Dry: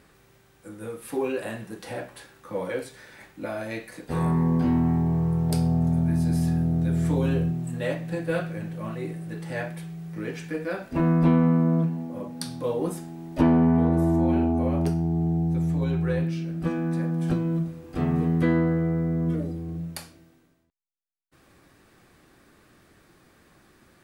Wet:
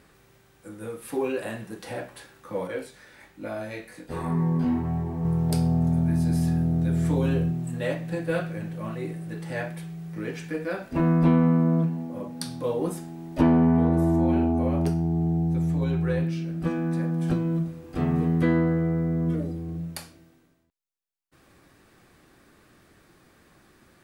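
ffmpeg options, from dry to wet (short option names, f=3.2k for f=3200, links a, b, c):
-filter_complex "[0:a]asettb=1/sr,asplit=3[a][b][c];[a]atrim=end=2.674[d];[b]atrim=start=2.67:end=5.25,asetpts=PTS-STARTPTS,afade=t=in:d=0.004:c=qsin,afade=t=out:st=2.576:d=0.004:c=qsin,flanger=delay=18.5:depth=4.1:speed=1.1[e];[c]atrim=start=5.246[f];[d][e]acrossfade=d=0.004:c1=hsin:c2=qsin[g];[g][f]acrossfade=d=0.004:c1=qsin:c2=hsin"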